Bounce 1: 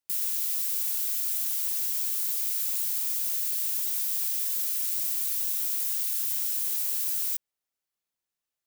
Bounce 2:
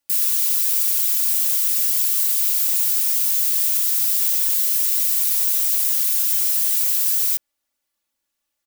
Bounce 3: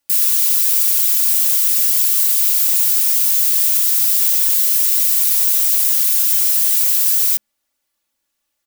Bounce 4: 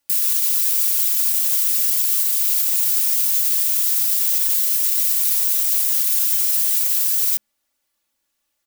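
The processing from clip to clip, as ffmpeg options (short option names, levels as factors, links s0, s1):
-af "aecho=1:1:3.5:0.89,volume=2.24"
-af "bandreject=f=213.3:t=h:w=4,bandreject=f=426.6:t=h:w=4,volume=1.68"
-af "alimiter=level_in=2.37:limit=0.891:release=50:level=0:latency=1,volume=0.422"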